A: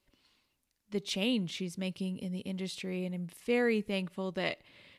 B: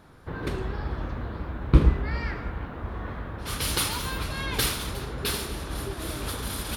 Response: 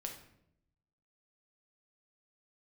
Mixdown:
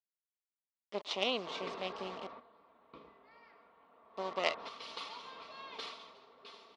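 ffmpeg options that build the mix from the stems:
-filter_complex "[0:a]acrusher=bits=5:dc=4:mix=0:aa=0.000001,volume=3dB,asplit=3[link_01][link_02][link_03];[link_01]atrim=end=2.27,asetpts=PTS-STARTPTS,afade=type=out:start_time=2.266:duration=0.004:curve=hsin[link_04];[link_02]atrim=start=2.27:end=4.16,asetpts=PTS-STARTPTS,volume=0[link_05];[link_03]atrim=start=4.16,asetpts=PTS-STARTPTS,afade=type=in:duration=0.004:curve=hsin[link_06];[link_04][link_05][link_06]concat=n=3:v=0:a=1,asplit=2[link_07][link_08];[1:a]aecho=1:1:4.4:0.49,acompressor=mode=upward:threshold=-30dB:ratio=2.5,adelay=1200,volume=1.5dB,afade=type=out:start_time=2.08:duration=0.45:silence=0.375837,afade=type=in:start_time=4.01:duration=0.69:silence=0.334965,afade=type=out:start_time=5.86:duration=0.37:silence=0.446684[link_09];[link_08]apad=whole_len=351493[link_10];[link_09][link_10]sidechaingate=range=-9dB:threshold=-52dB:ratio=16:detection=peak[link_11];[link_07][link_11]amix=inputs=2:normalize=0,highpass=460,equalizer=frequency=620:width_type=q:width=4:gain=5,equalizer=frequency=1100:width_type=q:width=4:gain=7,equalizer=frequency=1600:width_type=q:width=4:gain=-10,lowpass=frequency=4800:width=0.5412,lowpass=frequency=4800:width=1.3066"

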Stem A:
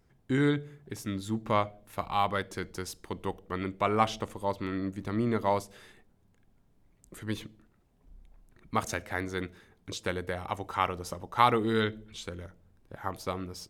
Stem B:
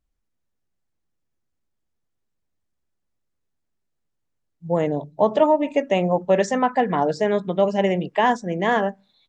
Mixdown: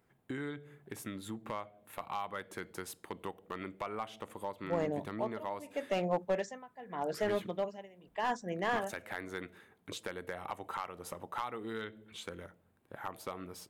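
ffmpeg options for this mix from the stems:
ffmpeg -i stem1.wav -i stem2.wav -filter_complex "[0:a]highpass=110,equalizer=frequency=5400:width_type=o:width=0.93:gain=-10.5,acompressor=threshold=-34dB:ratio=8,volume=1dB[link_01];[1:a]tremolo=f=0.82:d=0.95,volume=-8dB[link_02];[link_01][link_02]amix=inputs=2:normalize=0,lowshelf=frequency=390:gain=-7,aeval=exprs='clip(val(0),-1,0.0398)':channel_layout=same" out.wav

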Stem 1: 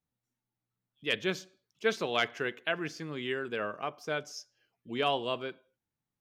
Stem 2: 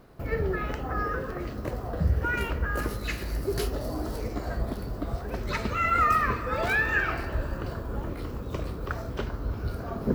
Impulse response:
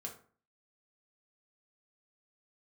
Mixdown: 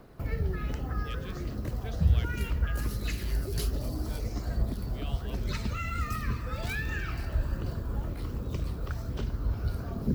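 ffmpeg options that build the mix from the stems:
-filter_complex "[0:a]volume=-10.5dB[link_01];[1:a]aphaser=in_gain=1:out_gain=1:delay=1.6:decay=0.24:speed=1.3:type=triangular,volume=-0.5dB[link_02];[link_01][link_02]amix=inputs=2:normalize=0,acrossover=split=250|3000[link_03][link_04][link_05];[link_04]acompressor=threshold=-45dB:ratio=3[link_06];[link_03][link_06][link_05]amix=inputs=3:normalize=0"

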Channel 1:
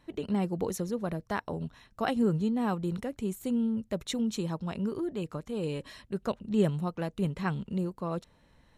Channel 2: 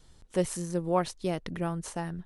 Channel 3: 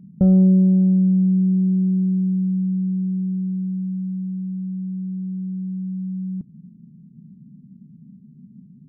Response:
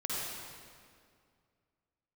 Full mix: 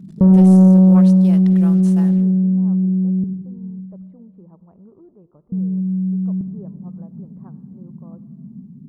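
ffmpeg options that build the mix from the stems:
-filter_complex "[0:a]lowpass=frequency=1000:width=0.5412,lowpass=frequency=1000:width=1.3066,volume=-14.5dB,asplit=2[link_01][link_02];[link_02]volume=-20dB[link_03];[1:a]acrusher=bits=7:mix=0:aa=0.5,volume=-1.5dB,asplit=2[link_04][link_05];[link_05]volume=-20.5dB[link_06];[2:a]equalizer=frequency=550:width=0.44:gain=5.5,volume=1.5dB,asplit=3[link_07][link_08][link_09];[link_07]atrim=end=3.24,asetpts=PTS-STARTPTS,afade=type=out:start_time=3.236:duration=0.004:curve=hsin[link_10];[link_08]atrim=start=3.24:end=5.52,asetpts=PTS-STARTPTS,volume=0[link_11];[link_09]atrim=start=5.52,asetpts=PTS-STARTPTS,afade=type=in:duration=0.004:curve=hsin[link_12];[link_10][link_11][link_12]concat=n=3:v=0:a=1,asplit=2[link_13][link_14];[link_14]volume=-8dB[link_15];[3:a]atrim=start_sample=2205[link_16];[link_03][link_06][link_15]amix=inputs=3:normalize=0[link_17];[link_17][link_16]afir=irnorm=-1:irlink=0[link_18];[link_01][link_04][link_13][link_18]amix=inputs=4:normalize=0,asoftclip=type=tanh:threshold=-4.5dB"

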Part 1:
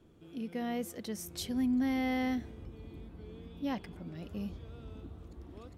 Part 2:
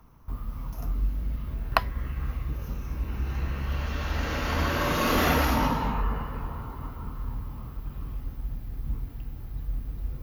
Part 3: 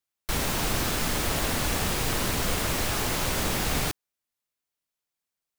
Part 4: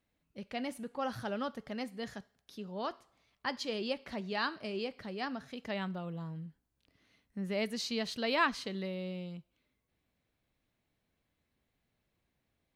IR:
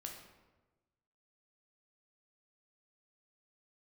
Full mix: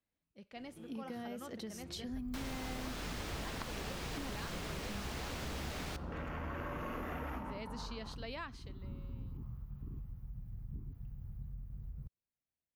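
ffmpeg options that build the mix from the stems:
-filter_complex "[0:a]acompressor=threshold=-37dB:ratio=6,adelay=550,volume=-0.5dB[link_01];[1:a]afwtdn=0.0251,equalizer=frequency=3600:width_type=o:width=1.5:gain=-4.5,acompressor=threshold=-31dB:ratio=3,adelay=1850,volume=-2.5dB[link_02];[2:a]adelay=2050,volume=-11.5dB,asplit=2[link_03][link_04];[link_04]volume=-9.5dB[link_05];[3:a]volume=-10.5dB,afade=type=out:start_time=8.22:duration=0.65:silence=0.298538,asplit=2[link_06][link_07];[link_07]apad=whole_len=532314[link_08];[link_02][link_08]sidechaincompress=threshold=-50dB:ratio=8:attack=48:release=502[link_09];[4:a]atrim=start_sample=2205[link_10];[link_05][link_10]afir=irnorm=-1:irlink=0[link_11];[link_01][link_09][link_03][link_06][link_11]amix=inputs=5:normalize=0,acrossover=split=89|6400[link_12][link_13][link_14];[link_12]acompressor=threshold=-47dB:ratio=4[link_15];[link_13]acompressor=threshold=-40dB:ratio=4[link_16];[link_14]acompressor=threshold=-60dB:ratio=4[link_17];[link_15][link_16][link_17]amix=inputs=3:normalize=0"

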